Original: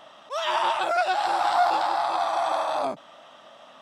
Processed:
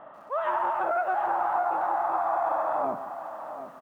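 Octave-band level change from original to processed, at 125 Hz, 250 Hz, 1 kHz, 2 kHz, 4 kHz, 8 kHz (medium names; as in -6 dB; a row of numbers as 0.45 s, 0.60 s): no reading, -1.0 dB, -2.5 dB, -5.5 dB, under -25 dB, under -20 dB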